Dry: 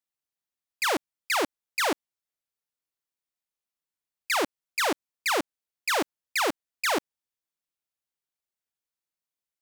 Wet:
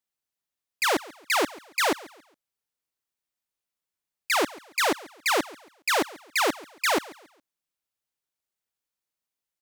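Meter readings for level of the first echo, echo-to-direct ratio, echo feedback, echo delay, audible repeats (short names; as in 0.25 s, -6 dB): -20.0 dB, -19.5 dB, 33%, 0.138 s, 2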